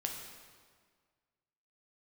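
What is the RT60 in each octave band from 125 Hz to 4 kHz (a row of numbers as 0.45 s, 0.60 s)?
1.9 s, 1.8 s, 1.8 s, 1.7 s, 1.5 s, 1.4 s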